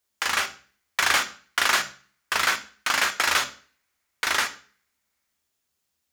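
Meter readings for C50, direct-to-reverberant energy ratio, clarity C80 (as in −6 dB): 14.5 dB, 9.0 dB, 19.5 dB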